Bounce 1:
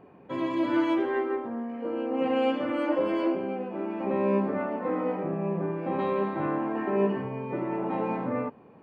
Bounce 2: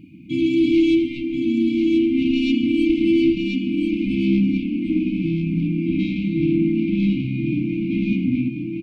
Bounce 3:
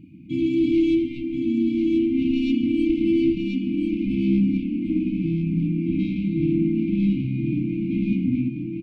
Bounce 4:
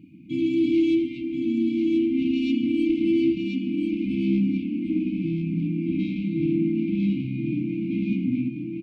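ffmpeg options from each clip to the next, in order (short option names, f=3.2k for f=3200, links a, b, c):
-af "aeval=exprs='0.2*(cos(1*acos(clip(val(0)/0.2,-1,1)))-cos(1*PI/2))+0.0398*(cos(5*acos(clip(val(0)/0.2,-1,1)))-cos(5*PI/2))':c=same,afftfilt=real='re*(1-between(b*sr/4096,340,2100))':imag='im*(1-between(b*sr/4096,340,2100))':win_size=4096:overlap=0.75,aecho=1:1:1035|2070|3105|4140:0.562|0.152|0.041|0.0111,volume=7dB"
-af "lowshelf=f=390:g=8.5,volume=-8dB"
-af "highpass=f=190:p=1"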